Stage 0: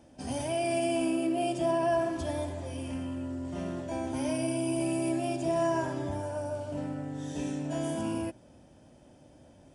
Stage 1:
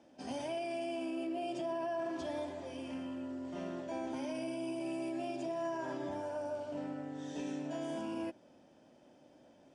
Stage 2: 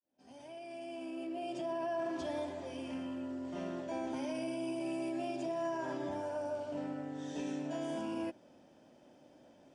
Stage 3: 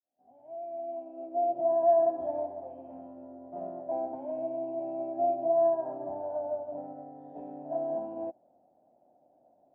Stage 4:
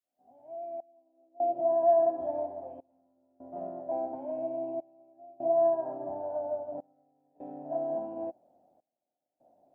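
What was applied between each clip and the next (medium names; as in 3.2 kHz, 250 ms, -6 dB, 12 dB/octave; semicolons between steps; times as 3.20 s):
three-band isolator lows -18 dB, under 190 Hz, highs -23 dB, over 7.1 kHz; peak limiter -27.5 dBFS, peak gain reduction 8 dB; trim -3.5 dB
fade-in on the opening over 1.98 s; trim +1 dB
resonant low-pass 720 Hz, resonance Q 8.3; upward expansion 1.5:1, over -44 dBFS
trance gate "xxxx...xxx" 75 bpm -24 dB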